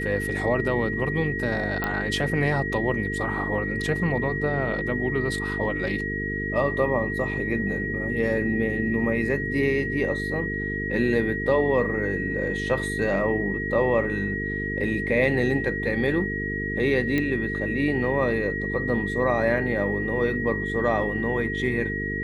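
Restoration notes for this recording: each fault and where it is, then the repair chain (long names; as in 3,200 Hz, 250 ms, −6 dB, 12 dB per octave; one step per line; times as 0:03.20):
mains buzz 50 Hz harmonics 9 −31 dBFS
whistle 1,900 Hz −29 dBFS
0:01.84: click −13 dBFS
0:17.18: click −13 dBFS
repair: click removal
hum removal 50 Hz, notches 9
notch filter 1,900 Hz, Q 30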